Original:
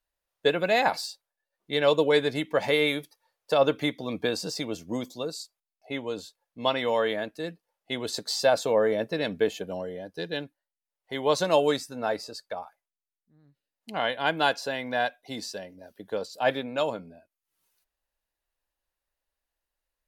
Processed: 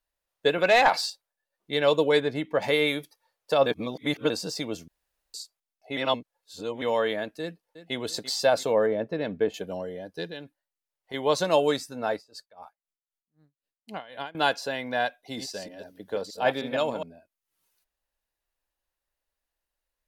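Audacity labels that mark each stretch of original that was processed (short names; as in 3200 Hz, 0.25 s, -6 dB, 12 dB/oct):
0.580000	1.100000	overdrive pedal drive 14 dB, tone 4000 Hz, clips at -9.5 dBFS
2.200000	2.620000	high shelf 3200 Hz -10.5 dB
3.660000	4.300000	reverse
4.880000	5.340000	room tone
5.970000	6.820000	reverse
7.410000	7.950000	echo throw 0.34 s, feedback 50%, level -13.5 dB
8.860000	9.540000	LPF 1300 Hz 6 dB/oct
10.260000	11.140000	compressor 2:1, threshold -39 dBFS
12.140000	14.350000	dB-linear tremolo 3.9 Hz, depth 23 dB
15.220000	17.030000	reverse delay 0.155 s, level -6.5 dB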